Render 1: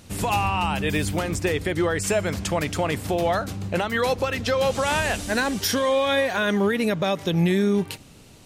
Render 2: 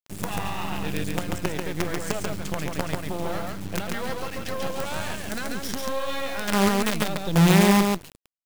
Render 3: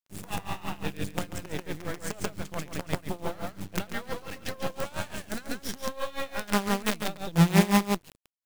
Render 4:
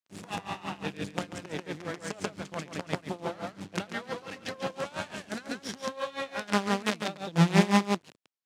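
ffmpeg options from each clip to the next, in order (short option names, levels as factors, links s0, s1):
-filter_complex "[0:a]equalizer=f=170:w=1.4:g=9,acrusher=bits=3:dc=4:mix=0:aa=0.000001,asplit=2[s0][s1];[s1]aecho=0:1:139:0.708[s2];[s0][s2]amix=inputs=2:normalize=0,volume=0.473"
-af "aeval=exprs='val(0)*pow(10,-19*(0.5-0.5*cos(2*PI*5.8*n/s))/20)':c=same"
-af "highpass=150,lowpass=6700"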